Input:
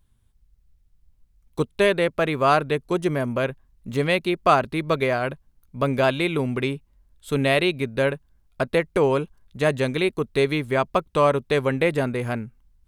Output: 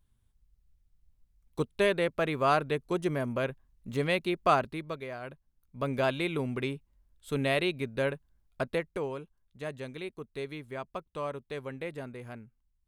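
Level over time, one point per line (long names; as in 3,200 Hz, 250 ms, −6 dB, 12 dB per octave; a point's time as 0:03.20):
0:04.60 −7 dB
0:05.03 −18 dB
0:06.00 −8 dB
0:08.66 −8 dB
0:09.16 −17 dB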